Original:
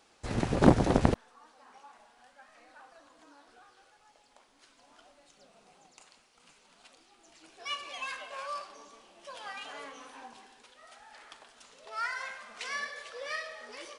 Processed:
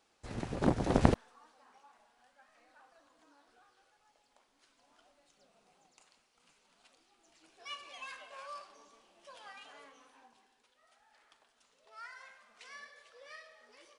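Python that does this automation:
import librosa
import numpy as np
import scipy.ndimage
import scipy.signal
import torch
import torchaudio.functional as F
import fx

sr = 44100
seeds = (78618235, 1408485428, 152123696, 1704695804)

y = fx.gain(x, sr, db=fx.line((0.75, -9.0), (1.05, 0.0), (1.81, -8.0), (9.31, -8.0), (10.32, -14.5)))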